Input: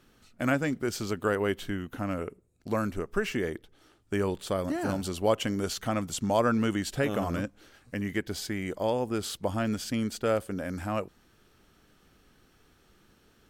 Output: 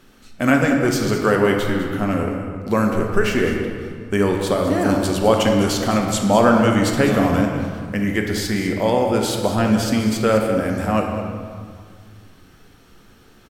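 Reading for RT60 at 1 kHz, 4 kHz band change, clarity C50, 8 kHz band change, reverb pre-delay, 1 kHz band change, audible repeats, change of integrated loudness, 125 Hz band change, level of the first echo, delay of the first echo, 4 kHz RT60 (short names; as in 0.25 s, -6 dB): 2.0 s, +10.5 dB, 3.0 dB, +10.0 dB, 4 ms, +12.0 dB, 1, +11.5 dB, +12.0 dB, -12.0 dB, 0.203 s, 1.2 s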